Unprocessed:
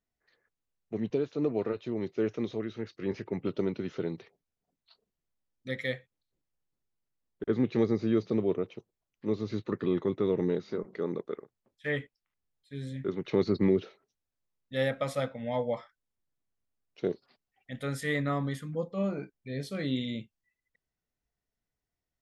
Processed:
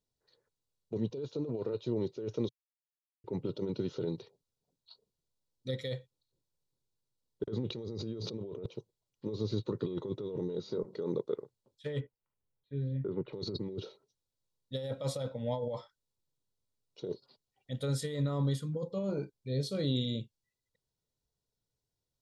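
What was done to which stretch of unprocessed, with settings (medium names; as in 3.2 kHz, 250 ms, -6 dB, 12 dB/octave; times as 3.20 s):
2.49–3.24 s: mute
7.70–8.66 s: level flattener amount 100%
12.00–13.33 s: low-pass 2.3 kHz 24 dB/octave
whole clip: comb 2.1 ms, depth 40%; compressor with a negative ratio -32 dBFS, ratio -1; ten-band graphic EQ 125 Hz +9 dB, 250 Hz +5 dB, 500 Hz +4 dB, 1 kHz +4 dB, 2 kHz -12 dB, 4 kHz +11 dB, 8 kHz +5 dB; trim -9 dB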